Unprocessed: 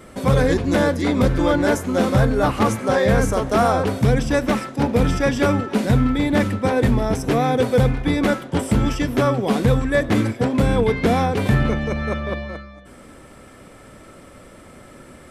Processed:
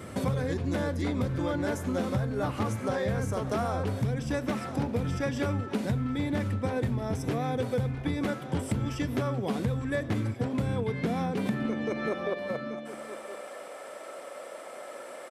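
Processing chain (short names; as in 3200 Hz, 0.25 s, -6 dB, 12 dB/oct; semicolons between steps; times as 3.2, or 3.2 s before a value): high-pass sweep 94 Hz -> 590 Hz, 10.62–12.76; echo 1.013 s -20.5 dB; compressor 5:1, threshold -28 dBFS, peak gain reduction 18 dB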